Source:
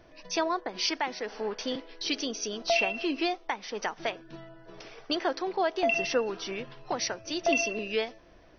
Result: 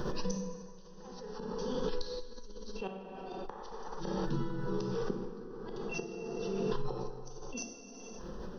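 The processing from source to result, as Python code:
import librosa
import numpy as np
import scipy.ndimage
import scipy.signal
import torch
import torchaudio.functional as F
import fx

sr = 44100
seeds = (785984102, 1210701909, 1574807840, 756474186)

y = fx.over_compress(x, sr, threshold_db=-32.0, ratio=-0.5)
y = fx.gate_flip(y, sr, shuts_db=-28.0, range_db=-37)
y = fx.low_shelf(y, sr, hz=500.0, db=8.0)
y = fx.fixed_phaser(y, sr, hz=440.0, stages=8)
y = fx.echo_wet_lowpass(y, sr, ms=62, feedback_pct=66, hz=870.0, wet_db=-8.5)
y = fx.rev_plate(y, sr, seeds[0], rt60_s=2.0, hf_ratio=0.65, predelay_ms=0, drr_db=1.5)
y = fx.dynamic_eq(y, sr, hz=280.0, q=0.78, threshold_db=-55.0, ratio=4.0, max_db=4)
y = fx.comb_fb(y, sr, f0_hz=95.0, decay_s=1.6, harmonics='all', damping=0.0, mix_pct=50)
y = fx.pre_swell(y, sr, db_per_s=20.0)
y = F.gain(torch.from_numpy(y), 8.5).numpy()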